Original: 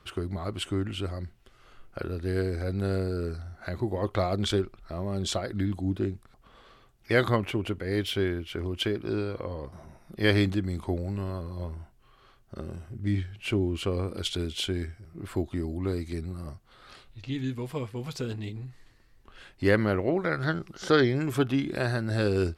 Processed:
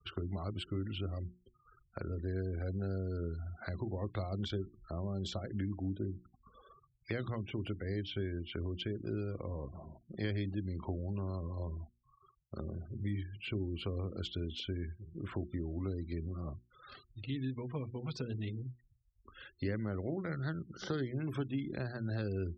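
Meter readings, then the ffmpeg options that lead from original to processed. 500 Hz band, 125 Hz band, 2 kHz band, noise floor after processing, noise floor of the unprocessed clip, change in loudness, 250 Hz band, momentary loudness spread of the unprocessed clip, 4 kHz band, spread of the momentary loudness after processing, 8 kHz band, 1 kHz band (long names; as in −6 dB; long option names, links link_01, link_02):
−12.5 dB, −6.5 dB, −14.5 dB, −72 dBFS, −59 dBFS, −10.0 dB, −9.5 dB, 15 LU, −11.5 dB, 8 LU, below −15 dB, −13.5 dB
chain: -filter_complex "[0:a]highpass=48,highshelf=frequency=9000:gain=4,acrossover=split=260|5100[link_01][link_02][link_03];[link_01]acompressor=threshold=-35dB:ratio=4[link_04];[link_02]acompressor=threshold=-42dB:ratio=4[link_05];[link_03]acompressor=threshold=-60dB:ratio=4[link_06];[link_04][link_05][link_06]amix=inputs=3:normalize=0,afftfilt=real='re*gte(hypot(re,im),0.00501)':imag='im*gte(hypot(re,im),0.00501)':win_size=1024:overlap=0.75,bandreject=frequency=60:width_type=h:width=6,bandreject=frequency=120:width_type=h:width=6,bandreject=frequency=180:width_type=h:width=6,bandreject=frequency=240:width_type=h:width=6,bandreject=frequency=300:width_type=h:width=6,bandreject=frequency=360:width_type=h:width=6,volume=-1dB"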